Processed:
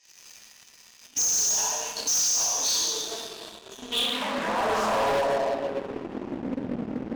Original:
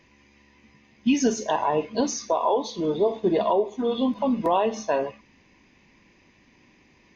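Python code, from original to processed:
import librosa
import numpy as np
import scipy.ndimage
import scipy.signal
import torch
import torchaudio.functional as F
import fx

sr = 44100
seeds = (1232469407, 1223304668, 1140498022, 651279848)

y = fx.power_curve(x, sr, exponent=0.7)
y = fx.over_compress(y, sr, threshold_db=-23.0, ratio=-0.5)
y = fx.spec_box(y, sr, start_s=3.38, length_s=0.54, low_hz=400.0, high_hz=5800.0, gain_db=-11)
y = fx.rev_plate(y, sr, seeds[0], rt60_s=1.6, hf_ratio=0.75, predelay_ms=0, drr_db=-8.0)
y = fx.filter_sweep_bandpass(y, sr, from_hz=6400.0, to_hz=240.0, start_s=3.1, end_s=6.58, q=2.9)
y = fx.leveller(y, sr, passes=3)
y = np.clip(y, -10.0 ** (-20.5 / 20.0), 10.0 ** (-20.5 / 20.0))
y = fx.notch(y, sr, hz=2100.0, q=7.8)
y = fx.doppler_dist(y, sr, depth_ms=0.5)
y = y * librosa.db_to_amplitude(-1.5)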